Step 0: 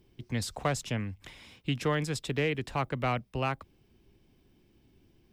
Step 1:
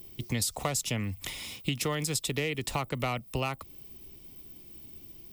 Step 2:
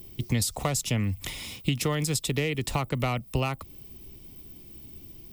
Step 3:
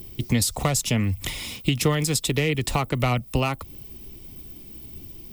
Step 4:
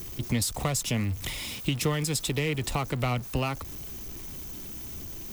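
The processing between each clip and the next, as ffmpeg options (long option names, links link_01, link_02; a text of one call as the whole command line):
ffmpeg -i in.wav -af "aemphasis=mode=production:type=75fm,acompressor=threshold=-35dB:ratio=6,bandreject=frequency=1600:width=5.3,volume=7.5dB" out.wav
ffmpeg -i in.wav -af "lowshelf=frequency=260:gain=6,volume=1.5dB" out.wav
ffmpeg -i in.wav -af "aphaser=in_gain=1:out_gain=1:delay=4.9:decay=0.25:speed=1.6:type=triangular,volume=4.5dB" out.wav
ffmpeg -i in.wav -af "aeval=exprs='val(0)+0.5*0.0316*sgn(val(0))':channel_layout=same,volume=-6.5dB" out.wav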